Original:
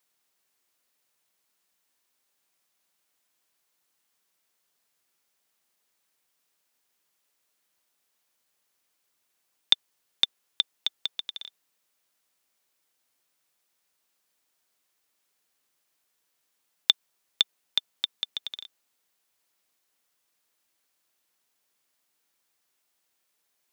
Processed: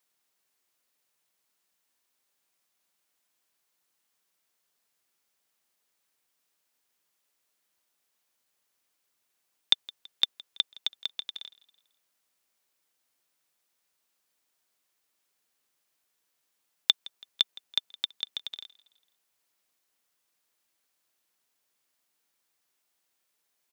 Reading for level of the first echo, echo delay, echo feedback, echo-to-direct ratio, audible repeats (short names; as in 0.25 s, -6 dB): -22.0 dB, 0.165 s, 47%, -21.0 dB, 2